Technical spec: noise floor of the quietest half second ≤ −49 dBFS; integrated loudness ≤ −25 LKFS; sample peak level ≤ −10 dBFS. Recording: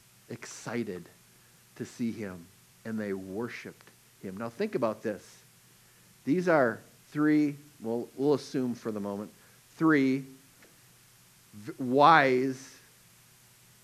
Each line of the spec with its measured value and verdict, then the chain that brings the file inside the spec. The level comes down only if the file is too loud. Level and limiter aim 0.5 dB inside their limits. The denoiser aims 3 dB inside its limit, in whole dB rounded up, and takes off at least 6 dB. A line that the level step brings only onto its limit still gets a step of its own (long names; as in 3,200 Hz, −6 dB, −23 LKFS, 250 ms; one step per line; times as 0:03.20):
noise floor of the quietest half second −60 dBFS: in spec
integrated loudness −29.0 LKFS: in spec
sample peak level −7.0 dBFS: out of spec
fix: brickwall limiter −10.5 dBFS